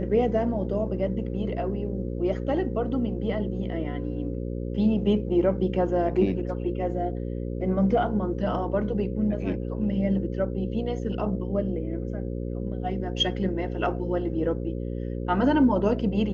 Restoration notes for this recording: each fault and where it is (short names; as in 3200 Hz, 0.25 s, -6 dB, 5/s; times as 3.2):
buzz 60 Hz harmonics 9 -31 dBFS